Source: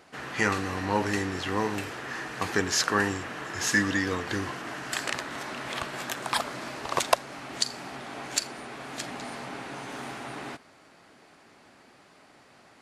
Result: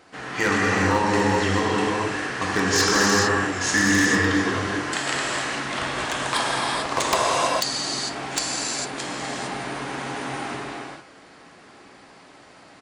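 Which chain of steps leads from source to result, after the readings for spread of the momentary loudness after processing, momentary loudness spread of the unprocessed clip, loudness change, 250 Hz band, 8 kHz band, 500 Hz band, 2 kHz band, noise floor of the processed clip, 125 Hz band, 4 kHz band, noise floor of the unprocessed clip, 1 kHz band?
12 LU, 13 LU, +7.5 dB, +8.0 dB, +7.5 dB, +7.5 dB, +7.5 dB, -49 dBFS, +7.5 dB, +7.5 dB, -57 dBFS, +8.0 dB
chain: downsampling 22050 Hz; non-linear reverb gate 0.48 s flat, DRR -5 dB; wavefolder -12.5 dBFS; gain +1.5 dB

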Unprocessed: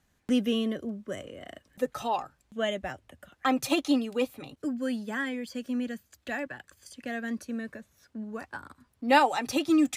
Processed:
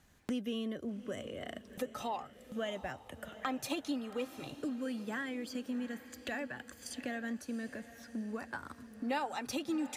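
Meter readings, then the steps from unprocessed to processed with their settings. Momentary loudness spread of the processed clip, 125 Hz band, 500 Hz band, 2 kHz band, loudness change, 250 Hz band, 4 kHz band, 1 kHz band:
8 LU, -5.0 dB, -9.0 dB, -8.5 dB, -10.0 dB, -9.0 dB, -8.5 dB, -11.5 dB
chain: compressor 3:1, threshold -44 dBFS, peak gain reduction 20 dB; diffused feedback echo 0.732 s, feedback 47%, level -14 dB; gain +4.5 dB

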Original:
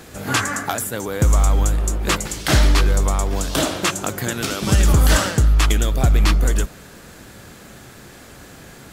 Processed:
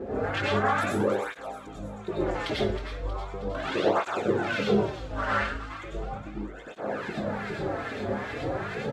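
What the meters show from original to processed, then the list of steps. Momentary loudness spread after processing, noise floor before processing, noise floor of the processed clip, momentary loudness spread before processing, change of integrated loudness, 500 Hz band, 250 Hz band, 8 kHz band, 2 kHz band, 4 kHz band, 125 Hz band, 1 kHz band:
12 LU, -42 dBFS, -42 dBFS, 8 LU, -10.5 dB, -1.0 dB, -6.0 dB, -26.0 dB, -6.0 dB, -13.0 dB, -16.0 dB, -4.0 dB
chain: tilt -3.5 dB/oct; notch 1000 Hz, Q 29; in parallel at -3 dB: negative-ratio compressor -19 dBFS; on the sum: limiter -12 dBFS, peak gain reduction 19 dB; LFO band-pass saw up 2.4 Hz 390–3900 Hz; doubler 19 ms -10.5 dB; on a send: thin delay 0.316 s, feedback 51%, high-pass 3500 Hz, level -9 dB; on the sum: plate-style reverb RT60 0.64 s, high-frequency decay 0.6×, pre-delay 80 ms, DRR -6.5 dB; tape flanging out of phase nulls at 0.37 Hz, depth 6.6 ms; gain +2 dB

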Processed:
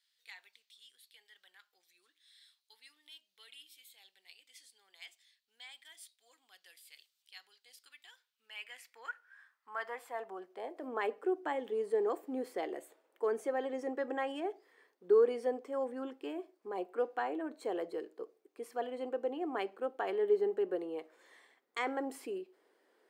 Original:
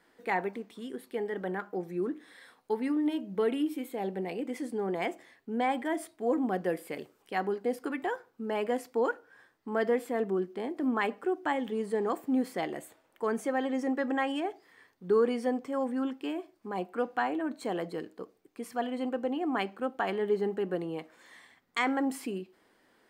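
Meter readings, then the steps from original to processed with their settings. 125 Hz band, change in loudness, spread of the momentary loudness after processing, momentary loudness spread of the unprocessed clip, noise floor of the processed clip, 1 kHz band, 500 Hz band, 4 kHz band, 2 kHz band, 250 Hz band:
under -20 dB, -4.0 dB, 23 LU, 10 LU, -82 dBFS, -8.0 dB, -4.0 dB, -6.5 dB, -8.5 dB, -12.5 dB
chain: high-pass sweep 3800 Hz -> 410 Hz, 8.08–11.16; gain -8 dB

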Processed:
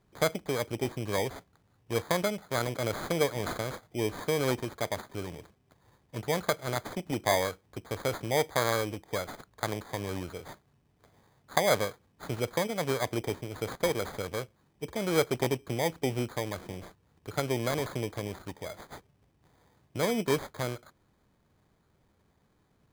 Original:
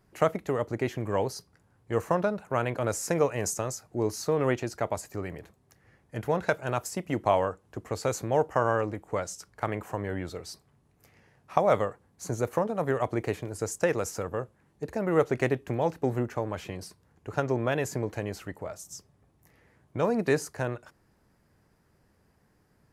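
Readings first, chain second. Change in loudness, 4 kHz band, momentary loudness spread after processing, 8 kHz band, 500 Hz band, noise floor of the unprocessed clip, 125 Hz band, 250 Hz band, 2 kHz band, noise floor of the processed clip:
-2.0 dB, +8.0 dB, 14 LU, -1.5 dB, -3.0 dB, -67 dBFS, -2.5 dB, -2.5 dB, +0.5 dB, -70 dBFS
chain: sample-and-hold 16×; gain -2.5 dB

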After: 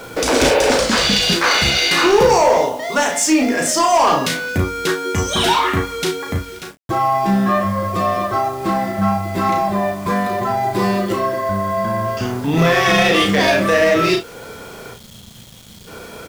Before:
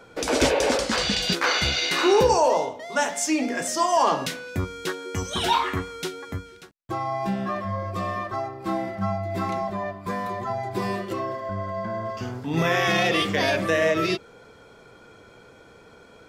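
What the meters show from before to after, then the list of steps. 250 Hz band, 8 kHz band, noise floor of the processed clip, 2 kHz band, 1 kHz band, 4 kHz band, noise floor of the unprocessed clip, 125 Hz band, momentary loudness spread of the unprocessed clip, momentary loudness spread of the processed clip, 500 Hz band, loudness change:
+9.5 dB, +9.0 dB, -40 dBFS, +8.0 dB, +8.5 dB, +8.5 dB, -50 dBFS, +8.0 dB, 10 LU, 9 LU, +7.5 dB, +8.0 dB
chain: spectral gain 14.94–15.88, 240–3100 Hz -27 dB; in parallel at +1.5 dB: compressor 4:1, threshold -38 dBFS, peak gain reduction 19 dB; on the sum: soft clip -16 dBFS, distortion -14 dB; bit-crush 8-bit; early reflections 35 ms -5 dB, 60 ms -13.5 dB; gain +7 dB

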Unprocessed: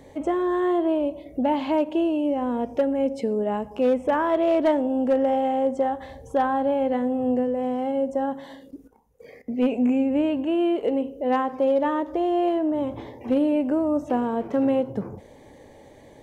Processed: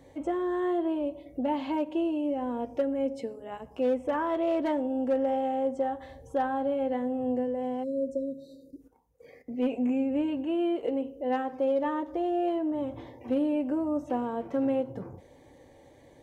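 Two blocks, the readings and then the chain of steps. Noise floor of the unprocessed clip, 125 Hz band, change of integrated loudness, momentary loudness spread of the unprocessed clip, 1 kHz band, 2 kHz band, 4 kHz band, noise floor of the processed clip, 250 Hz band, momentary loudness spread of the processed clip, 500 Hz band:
-49 dBFS, -7.0 dB, -6.0 dB, 6 LU, -6.5 dB, -6.5 dB, -6.5 dB, -56 dBFS, -6.0 dB, 9 LU, -6.0 dB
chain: spectral delete 7.83–8.81, 610–3700 Hz; notch comb 210 Hz; gain -5.5 dB

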